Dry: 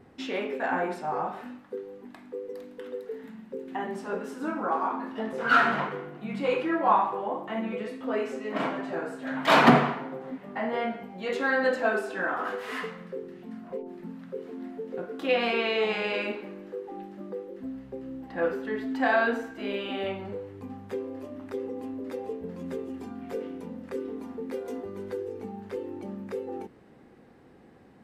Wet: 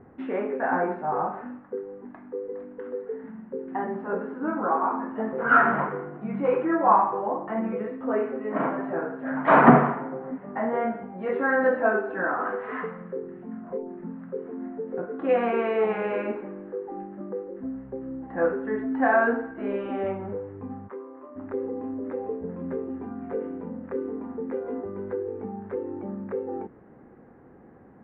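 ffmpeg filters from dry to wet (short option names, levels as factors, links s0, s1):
-filter_complex "[0:a]asplit=3[s0][s1][s2];[s0]afade=t=out:st=20.87:d=0.02[s3];[s1]highpass=480,equalizer=f=480:t=q:w=4:g=-9,equalizer=f=740:t=q:w=4:g=-9,equalizer=f=1100:t=q:w=4:g=6,equalizer=f=1700:t=q:w=4:g=-6,equalizer=f=2500:t=q:w=4:g=-6,lowpass=f=2900:w=0.5412,lowpass=f=2900:w=1.3066,afade=t=in:st=20.87:d=0.02,afade=t=out:st=21.35:d=0.02[s4];[s2]afade=t=in:st=21.35:d=0.02[s5];[s3][s4][s5]amix=inputs=3:normalize=0,lowpass=f=1700:w=0.5412,lowpass=f=1700:w=1.3066,volume=1.5"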